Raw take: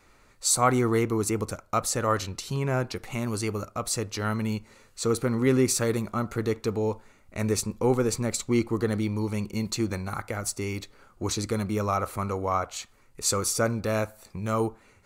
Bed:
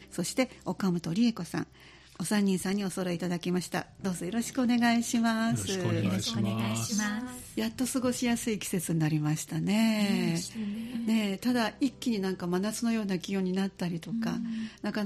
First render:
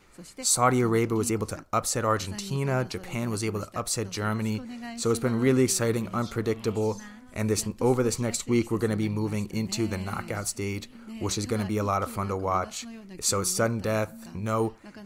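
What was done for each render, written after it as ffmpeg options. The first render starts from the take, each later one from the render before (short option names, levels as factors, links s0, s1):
-filter_complex "[1:a]volume=0.211[s0];[0:a][s0]amix=inputs=2:normalize=0"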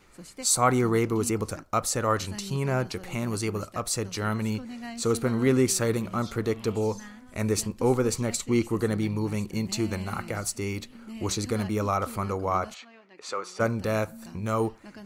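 -filter_complex "[0:a]asplit=3[s0][s1][s2];[s0]afade=t=out:st=12.73:d=0.02[s3];[s1]highpass=560,lowpass=2700,afade=t=in:st=12.73:d=0.02,afade=t=out:st=13.59:d=0.02[s4];[s2]afade=t=in:st=13.59:d=0.02[s5];[s3][s4][s5]amix=inputs=3:normalize=0"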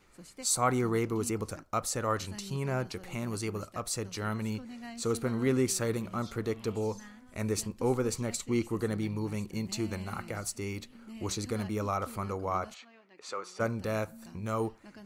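-af "volume=0.531"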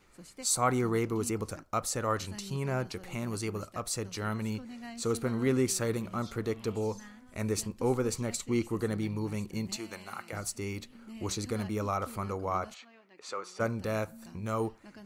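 -filter_complex "[0:a]asettb=1/sr,asplit=3[s0][s1][s2];[s0]atrim=end=9.764[s3];[s1]atrim=start=9.76:end=10.33,asetpts=PTS-STARTPTS,afade=t=in:d=0.004:c=qsin,afade=t=out:st=0.566:d=0.004:c=qsin,highpass=f=710:p=1[s4];[s2]atrim=start=10.326[s5];[s3][s4]acrossfade=d=0.004:c1=hsin:c2=qsin[s6];[s6][s5]acrossfade=d=0.004:c1=qsin:c2=hsin"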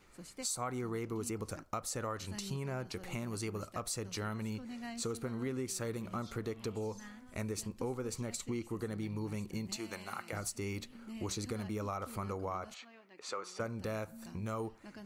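-af "acompressor=threshold=0.0178:ratio=6"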